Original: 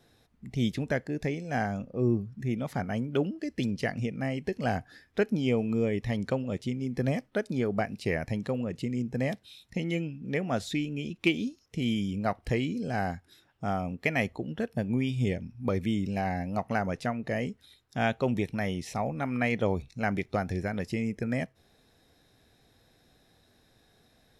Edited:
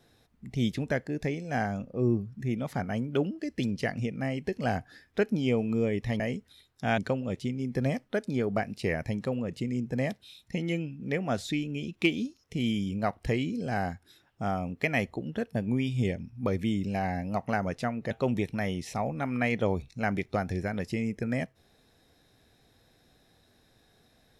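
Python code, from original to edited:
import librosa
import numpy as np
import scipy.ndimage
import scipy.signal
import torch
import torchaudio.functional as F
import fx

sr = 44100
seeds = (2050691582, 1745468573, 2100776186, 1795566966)

y = fx.edit(x, sr, fx.move(start_s=17.33, length_s=0.78, to_s=6.2), tone=tone)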